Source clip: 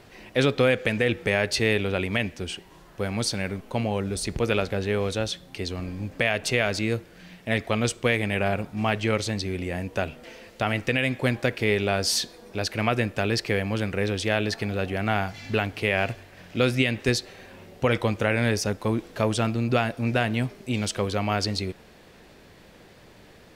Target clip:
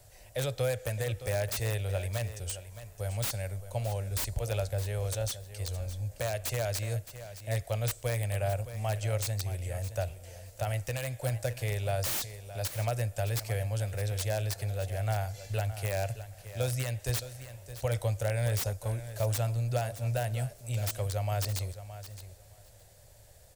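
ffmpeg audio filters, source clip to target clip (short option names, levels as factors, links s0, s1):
-filter_complex "[0:a]firequalizer=gain_entry='entry(110,0);entry(180,-20);entry(260,-25);entry(400,-19);entry(570,-4);entry(1100,-17);entry(1600,-13);entry(2400,-15);entry(7700,6)':delay=0.05:min_phase=1,acrossover=split=150|820[s0][s1][s2];[s2]aeval=exprs='(mod(22.4*val(0)+1,2)-1)/22.4':c=same[s3];[s0][s1][s3]amix=inputs=3:normalize=0,aecho=1:1:617|1234:0.224|0.0336"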